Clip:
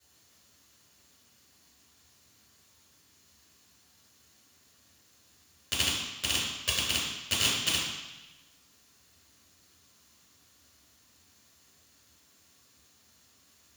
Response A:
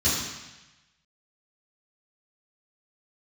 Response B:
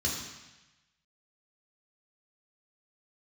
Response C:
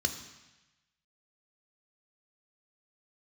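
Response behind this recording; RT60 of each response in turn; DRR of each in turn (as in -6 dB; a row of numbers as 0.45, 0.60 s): A; 1.0, 1.0, 1.0 s; -11.5, -3.5, 6.0 dB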